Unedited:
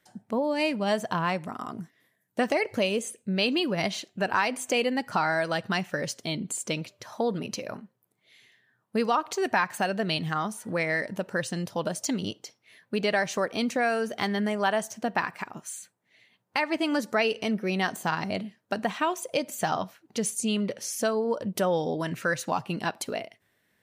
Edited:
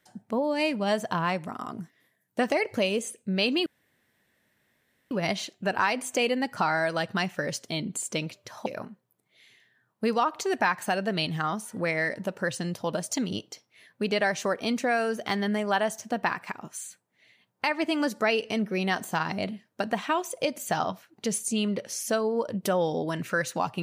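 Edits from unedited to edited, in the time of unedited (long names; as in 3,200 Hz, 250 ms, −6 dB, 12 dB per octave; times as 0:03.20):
0:03.66: splice in room tone 1.45 s
0:07.21–0:07.58: remove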